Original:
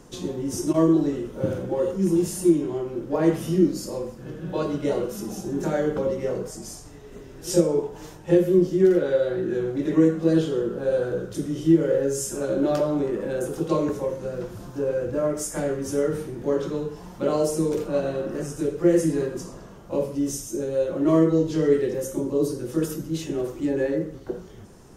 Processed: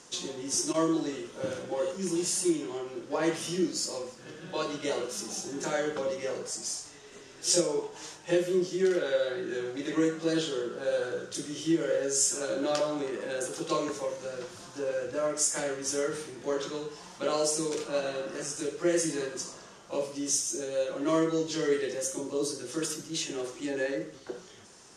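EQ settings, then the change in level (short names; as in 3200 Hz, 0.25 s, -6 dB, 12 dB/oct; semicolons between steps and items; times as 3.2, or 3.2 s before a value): Bessel low-pass 5900 Hz, order 6; tilt +4.5 dB/oct; -2.0 dB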